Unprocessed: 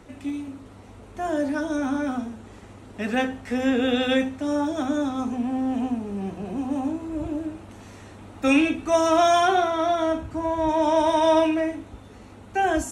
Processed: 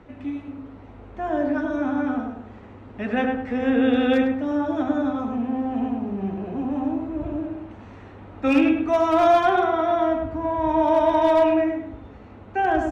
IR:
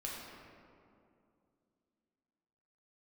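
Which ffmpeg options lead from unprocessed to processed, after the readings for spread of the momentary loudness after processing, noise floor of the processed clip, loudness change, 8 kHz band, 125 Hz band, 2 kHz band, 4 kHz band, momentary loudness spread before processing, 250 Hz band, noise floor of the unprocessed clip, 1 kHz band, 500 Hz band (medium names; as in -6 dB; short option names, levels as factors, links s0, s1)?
15 LU, -44 dBFS, +1.5 dB, under -15 dB, +1.5 dB, -0.5 dB, -6.0 dB, 17 LU, +2.0 dB, -45 dBFS, +1.5 dB, +2.0 dB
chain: -filter_complex "[0:a]lowpass=2500,asoftclip=type=hard:threshold=0.224,asplit=2[s0][s1];[s1]adelay=102,lowpass=f=1700:p=1,volume=0.708,asplit=2[s2][s3];[s3]adelay=102,lowpass=f=1700:p=1,volume=0.37,asplit=2[s4][s5];[s5]adelay=102,lowpass=f=1700:p=1,volume=0.37,asplit=2[s6][s7];[s7]adelay=102,lowpass=f=1700:p=1,volume=0.37,asplit=2[s8][s9];[s9]adelay=102,lowpass=f=1700:p=1,volume=0.37[s10];[s0][s2][s4][s6][s8][s10]amix=inputs=6:normalize=0"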